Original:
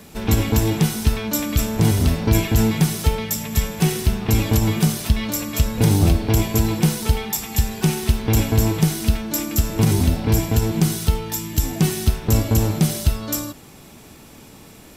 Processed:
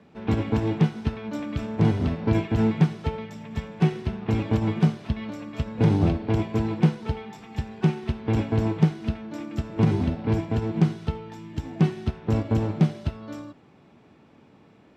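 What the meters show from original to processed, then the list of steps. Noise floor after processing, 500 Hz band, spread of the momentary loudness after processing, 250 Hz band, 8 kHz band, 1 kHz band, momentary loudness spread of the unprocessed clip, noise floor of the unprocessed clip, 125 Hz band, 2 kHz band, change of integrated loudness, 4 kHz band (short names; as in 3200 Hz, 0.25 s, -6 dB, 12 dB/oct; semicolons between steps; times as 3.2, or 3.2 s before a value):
-55 dBFS, -4.0 dB, 12 LU, -3.5 dB, under -25 dB, -5.0 dB, 5 LU, -44 dBFS, -5.5 dB, -8.0 dB, -5.5 dB, -14.5 dB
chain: BPF 110–3200 Hz; high shelf 2500 Hz -8.5 dB; upward expander 1.5:1, over -30 dBFS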